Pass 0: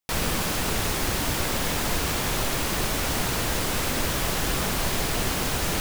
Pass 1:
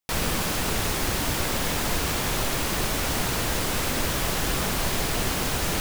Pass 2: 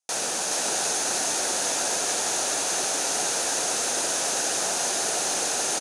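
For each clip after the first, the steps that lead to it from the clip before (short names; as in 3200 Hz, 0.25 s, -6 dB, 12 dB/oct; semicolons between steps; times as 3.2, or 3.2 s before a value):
nothing audible
speaker cabinet 460–9700 Hz, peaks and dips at 730 Hz +4 dB, 1100 Hz -8 dB, 2100 Hz -8 dB, 3100 Hz -5 dB, 6400 Hz +10 dB, 9600 Hz +9 dB; echo 0.423 s -3.5 dB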